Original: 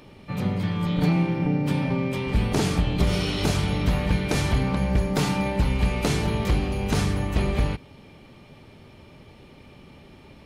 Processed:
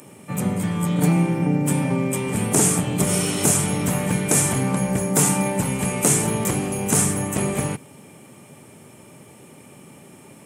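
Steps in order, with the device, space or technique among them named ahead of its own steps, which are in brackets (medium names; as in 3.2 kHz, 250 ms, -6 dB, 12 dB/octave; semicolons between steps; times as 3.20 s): budget condenser microphone (high-pass 120 Hz 24 dB/octave; resonant high shelf 6 kHz +12.5 dB, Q 3); trim +3.5 dB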